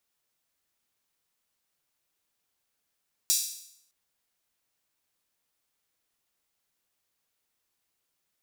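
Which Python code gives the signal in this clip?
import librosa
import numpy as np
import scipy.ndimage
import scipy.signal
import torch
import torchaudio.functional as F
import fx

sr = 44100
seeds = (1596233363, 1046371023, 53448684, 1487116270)

y = fx.drum_hat_open(sr, length_s=0.61, from_hz=5200.0, decay_s=0.71)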